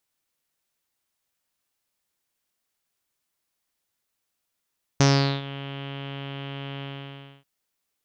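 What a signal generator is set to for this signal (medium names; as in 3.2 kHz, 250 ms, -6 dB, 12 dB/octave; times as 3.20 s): synth note saw C#3 24 dB/octave, low-pass 3.1 kHz, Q 5, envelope 1 oct, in 0.49 s, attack 2.3 ms, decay 0.41 s, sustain -19 dB, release 0.62 s, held 1.82 s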